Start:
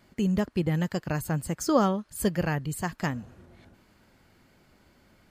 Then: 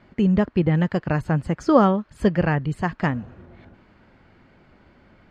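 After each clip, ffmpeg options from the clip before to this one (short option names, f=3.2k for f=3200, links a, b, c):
-af "lowpass=2.6k,volume=7dB"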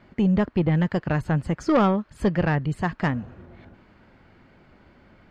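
-af "asoftclip=type=tanh:threshold=-13dB"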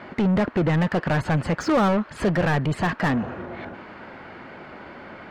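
-filter_complex "[0:a]asplit=2[a][b];[b]highpass=f=720:p=1,volume=28dB,asoftclip=type=tanh:threshold=-13dB[c];[a][c]amix=inputs=2:normalize=0,lowpass=f=1.5k:p=1,volume=-6dB,volume=-1dB"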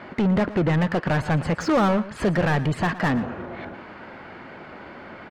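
-af "aecho=1:1:116:0.15"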